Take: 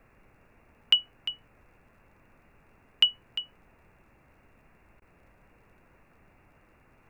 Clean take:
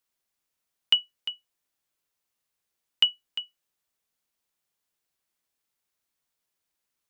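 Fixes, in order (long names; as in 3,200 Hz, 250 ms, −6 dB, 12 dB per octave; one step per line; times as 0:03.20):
click removal
repair the gap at 0:05.00, 17 ms
noise reduction from a noise print 21 dB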